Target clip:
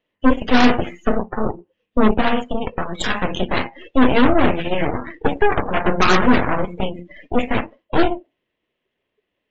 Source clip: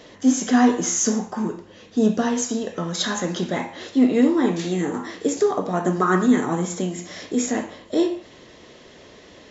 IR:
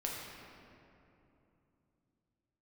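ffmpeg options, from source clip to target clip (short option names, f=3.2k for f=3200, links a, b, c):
-af "highshelf=f=4k:t=q:w=3:g=-13,aeval=exprs='0.531*(cos(1*acos(clip(val(0)/0.531,-1,1)))-cos(1*PI/2))+0.188*(cos(8*acos(clip(val(0)/0.531,-1,1)))-cos(8*PI/2))':c=same,afftdn=nr=32:nf=-28"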